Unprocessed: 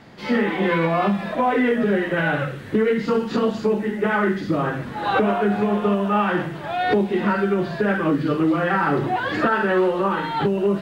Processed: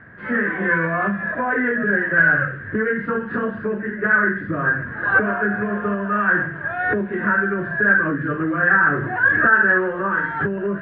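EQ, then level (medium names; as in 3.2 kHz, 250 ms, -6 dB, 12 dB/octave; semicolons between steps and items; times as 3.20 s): four-pole ladder low-pass 1.7 kHz, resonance 85%; peaking EQ 90 Hz +10.5 dB 1.1 oct; band-stop 830 Hz, Q 5.4; +8.0 dB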